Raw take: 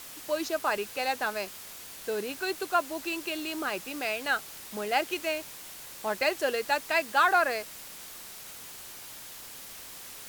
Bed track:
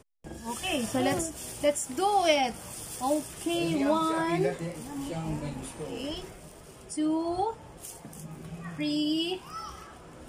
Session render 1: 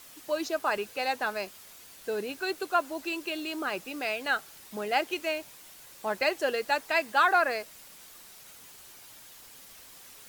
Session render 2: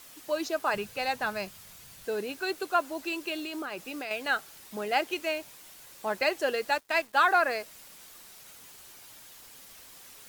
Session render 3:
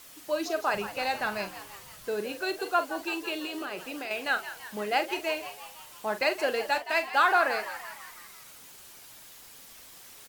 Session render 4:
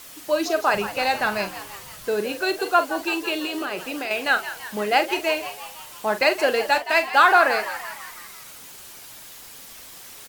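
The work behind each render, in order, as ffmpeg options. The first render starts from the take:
ffmpeg -i in.wav -af "afftdn=noise_reduction=7:noise_floor=-45" out.wav
ffmpeg -i in.wav -filter_complex "[0:a]asettb=1/sr,asplit=3[link_01][link_02][link_03];[link_01]atrim=end=0.744[link_04];[link_02]atrim=start=0.74:end=2.05,asetpts=PTS-STARTPTS,afade=type=in:duration=0.004:curve=qsin,afade=type=out:start_time=1.306:duration=0.004:curve=qsin,lowshelf=frequency=210:width_type=q:width=1.5:gain=9.5[link_05];[link_03]atrim=start=2.046[link_06];[link_04][link_05]acrossfade=duration=0.004:curve1=hsin:curve2=qsin[link_07];[link_07][link_06]acrossfade=duration=0.004:curve1=qsin:curve2=hsin,asettb=1/sr,asplit=3[link_08][link_09][link_10];[link_08]atrim=end=3.404[link_11];[link_09]atrim=start=3.4:end=4.11,asetpts=PTS-STARTPTS,afade=type=in:duration=0.004:curve=qsin,afade=type=out:start_time=0.706:duration=0.004:curve=qsin,acompressor=threshold=-32dB:ratio=6:attack=3.2:release=140:knee=1:detection=peak[link_12];[link_10]atrim=start=4.106[link_13];[link_11][link_12]acrossfade=duration=0.004:curve1=hsin:curve2=qsin[link_14];[link_14][link_13]acrossfade=duration=0.004:curve1=qsin:curve2=hsin,asettb=1/sr,asplit=3[link_15][link_16][link_17];[link_15]atrim=end=6.724[link_18];[link_16]atrim=start=6.72:end=7.15,asetpts=PTS-STARTPTS,afade=type=in:duration=0.004:curve=qsin,afade=type=out:start_time=0.426:duration=0.004:curve=qsin,aeval=exprs='sgn(val(0))*max(abs(val(0))-0.00596,0)':channel_layout=same[link_19];[link_17]atrim=start=7.146[link_20];[link_18][link_19]acrossfade=duration=0.004:curve1=hsin:curve2=qsin[link_21];[link_21][link_20]acrossfade=duration=0.004:curve1=qsin:curve2=hsin" out.wav
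ffmpeg -i in.wav -filter_complex "[0:a]asplit=2[link_01][link_02];[link_02]adelay=43,volume=-11dB[link_03];[link_01][link_03]amix=inputs=2:normalize=0,asplit=7[link_04][link_05][link_06][link_07][link_08][link_09][link_10];[link_05]adelay=167,afreqshift=100,volume=-13dB[link_11];[link_06]adelay=334,afreqshift=200,volume=-17.7dB[link_12];[link_07]adelay=501,afreqshift=300,volume=-22.5dB[link_13];[link_08]adelay=668,afreqshift=400,volume=-27.2dB[link_14];[link_09]adelay=835,afreqshift=500,volume=-31.9dB[link_15];[link_10]adelay=1002,afreqshift=600,volume=-36.7dB[link_16];[link_04][link_11][link_12][link_13][link_14][link_15][link_16]amix=inputs=7:normalize=0" out.wav
ffmpeg -i in.wav -af "volume=7.5dB" out.wav

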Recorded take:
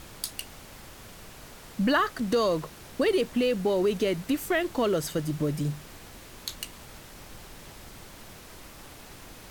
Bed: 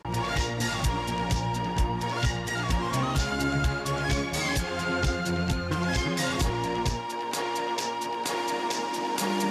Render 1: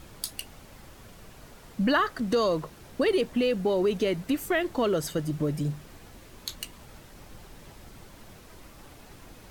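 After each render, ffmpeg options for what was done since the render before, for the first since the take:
ffmpeg -i in.wav -af "afftdn=noise_reduction=6:noise_floor=-47" out.wav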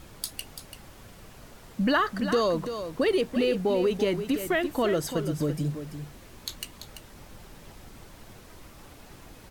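ffmpeg -i in.wav -af "aecho=1:1:338:0.335" out.wav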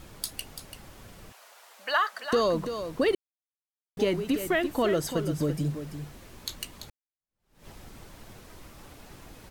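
ffmpeg -i in.wav -filter_complex "[0:a]asettb=1/sr,asplit=3[link_01][link_02][link_03];[link_01]atrim=end=1.324[link_04];[link_02]atrim=start=1.32:end=2.33,asetpts=PTS-STARTPTS,afade=type=in:duration=0.004:curve=qsin,afade=type=out:start_time=1.006:duration=0.004:curve=qsin,highpass=frequency=630:width=0.5412,highpass=frequency=630:width=1.3066[link_05];[link_03]atrim=start=2.326[link_06];[link_04][link_05]acrossfade=duration=0.004:curve1=hsin:curve2=qsin[link_07];[link_07][link_06]acrossfade=duration=0.004:curve1=qsin:curve2=hsin,asplit=4[link_08][link_09][link_10][link_11];[link_08]atrim=end=3.15,asetpts=PTS-STARTPTS,afade=type=out:start_time=3.146:duration=0.004:curve=hsin[link_12];[link_09]atrim=start=3.15:end=3.97,asetpts=PTS-STARTPTS,volume=0[link_13];[link_10]atrim=start=3.97:end=6.9,asetpts=PTS-STARTPTS,afade=type=in:duration=0.004:curve=hsin,afade=type=out:start_time=2.926:duration=0.004:curve=hsin[link_14];[link_11]atrim=start=6.9,asetpts=PTS-STARTPTS,afade=type=in:duration=0.77:curve=exp[link_15];[link_12][link_13][link_14][link_15]concat=n=4:v=0:a=1" out.wav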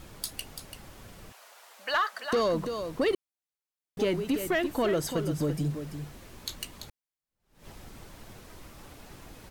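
ffmpeg -i in.wav -af "asoftclip=type=tanh:threshold=-18.5dB" out.wav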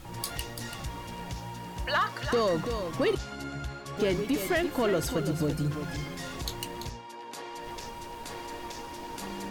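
ffmpeg -i in.wav -i bed.wav -filter_complex "[1:a]volume=-11dB[link_01];[0:a][link_01]amix=inputs=2:normalize=0" out.wav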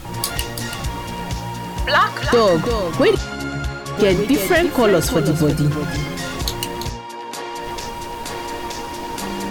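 ffmpeg -i in.wav -af "volume=12dB" out.wav

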